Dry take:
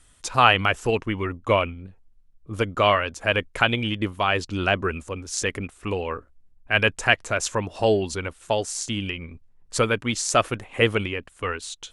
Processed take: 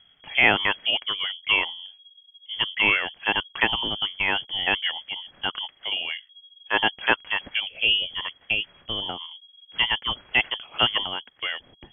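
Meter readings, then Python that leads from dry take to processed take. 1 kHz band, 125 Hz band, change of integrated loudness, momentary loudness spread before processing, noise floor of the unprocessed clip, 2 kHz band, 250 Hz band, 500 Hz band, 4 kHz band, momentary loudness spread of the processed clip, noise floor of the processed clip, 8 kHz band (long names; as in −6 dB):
−5.5 dB, −14.5 dB, 0.0 dB, 12 LU, −56 dBFS, +1.5 dB, −9.0 dB, −11.5 dB, +6.5 dB, 12 LU, −58 dBFS, below −40 dB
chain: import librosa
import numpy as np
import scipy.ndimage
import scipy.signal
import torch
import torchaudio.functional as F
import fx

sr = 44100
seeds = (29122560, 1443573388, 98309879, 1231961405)

y = fx.freq_invert(x, sr, carrier_hz=3300)
y = F.gain(torch.from_numpy(y), -2.0).numpy()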